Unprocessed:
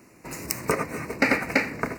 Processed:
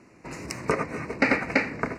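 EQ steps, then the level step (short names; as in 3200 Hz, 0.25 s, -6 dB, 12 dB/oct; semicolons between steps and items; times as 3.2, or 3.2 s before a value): air absorption 85 m; 0.0 dB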